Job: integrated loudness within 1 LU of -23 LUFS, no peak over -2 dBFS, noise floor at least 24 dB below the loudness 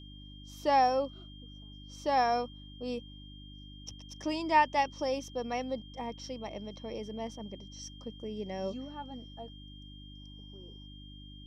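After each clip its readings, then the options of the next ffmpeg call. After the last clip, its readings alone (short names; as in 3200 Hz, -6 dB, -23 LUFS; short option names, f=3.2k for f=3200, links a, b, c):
hum 50 Hz; harmonics up to 300 Hz; hum level -48 dBFS; steady tone 3200 Hz; tone level -53 dBFS; loudness -33.0 LUFS; peak -13.0 dBFS; loudness target -23.0 LUFS
-> -af "bandreject=f=50:t=h:w=4,bandreject=f=100:t=h:w=4,bandreject=f=150:t=h:w=4,bandreject=f=200:t=h:w=4,bandreject=f=250:t=h:w=4,bandreject=f=300:t=h:w=4"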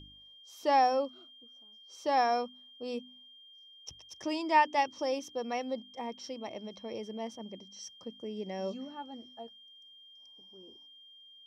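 hum none; steady tone 3200 Hz; tone level -53 dBFS
-> -af "bandreject=f=3.2k:w=30"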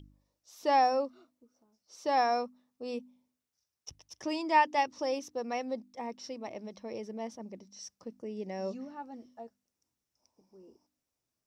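steady tone none; loudness -33.0 LUFS; peak -13.0 dBFS; loudness target -23.0 LUFS
-> -af "volume=10dB"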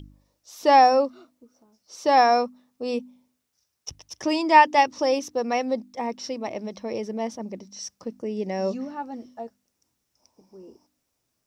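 loudness -23.0 LUFS; peak -3.0 dBFS; noise floor -77 dBFS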